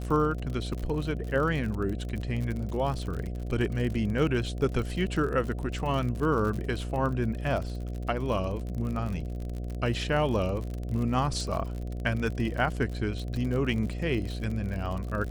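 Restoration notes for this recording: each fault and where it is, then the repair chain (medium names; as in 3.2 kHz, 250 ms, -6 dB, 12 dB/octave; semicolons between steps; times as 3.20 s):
buzz 60 Hz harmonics 12 -34 dBFS
crackle 50 per s -33 dBFS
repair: de-click; de-hum 60 Hz, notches 12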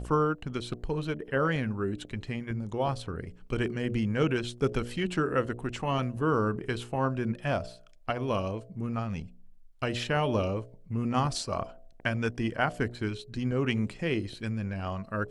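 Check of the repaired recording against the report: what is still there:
nothing left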